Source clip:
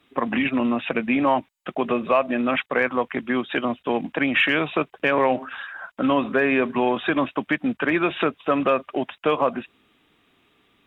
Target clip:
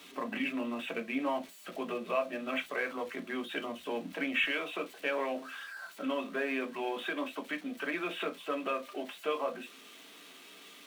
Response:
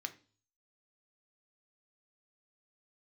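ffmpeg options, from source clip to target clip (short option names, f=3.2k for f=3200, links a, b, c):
-filter_complex "[0:a]aeval=exprs='val(0)+0.5*0.0168*sgn(val(0))':c=same,asetnsamples=n=441:p=0,asendcmd='4.44 equalizer g -12.5',equalizer=f=64:w=0.62:g=2.5[a];[1:a]atrim=start_sample=2205,afade=t=out:st=0.18:d=0.01,atrim=end_sample=8379,asetrate=74970,aresample=44100[b];[a][b]afir=irnorm=-1:irlink=0,volume=-5dB"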